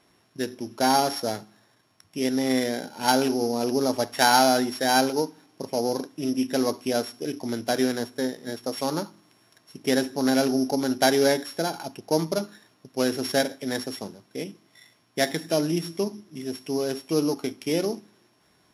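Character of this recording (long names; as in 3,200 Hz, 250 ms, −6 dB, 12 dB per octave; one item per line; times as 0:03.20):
a buzz of ramps at a fixed pitch in blocks of 8 samples
MP3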